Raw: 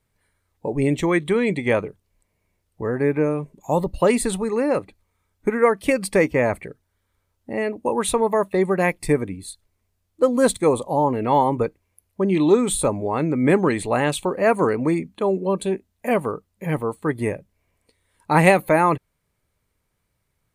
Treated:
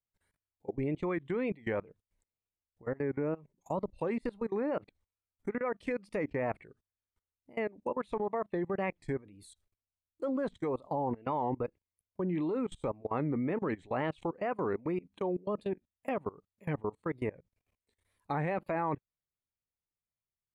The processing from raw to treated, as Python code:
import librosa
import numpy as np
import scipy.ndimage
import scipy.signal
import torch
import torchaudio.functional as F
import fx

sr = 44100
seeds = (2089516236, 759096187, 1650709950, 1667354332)

y = fx.level_steps(x, sr, step_db=23)
y = fx.env_lowpass_down(y, sr, base_hz=2100.0, full_db=-20.5)
y = fx.wow_flutter(y, sr, seeds[0], rate_hz=2.1, depth_cents=130.0)
y = F.gain(torch.from_numpy(y), -8.5).numpy()